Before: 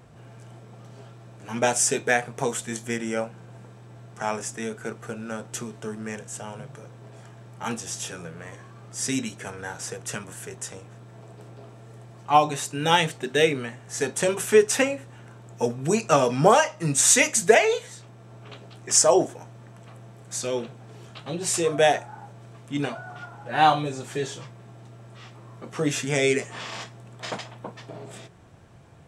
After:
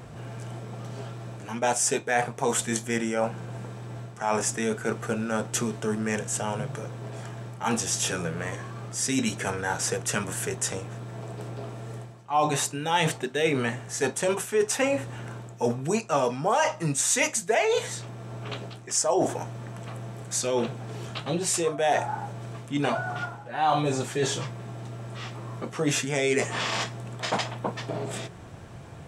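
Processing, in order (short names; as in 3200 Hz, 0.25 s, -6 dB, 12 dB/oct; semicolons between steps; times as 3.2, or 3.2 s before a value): dynamic EQ 880 Hz, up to +5 dB, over -37 dBFS, Q 1.5; reverse; compressor 5:1, threshold -31 dBFS, peak gain reduction 20.5 dB; reverse; gain +8 dB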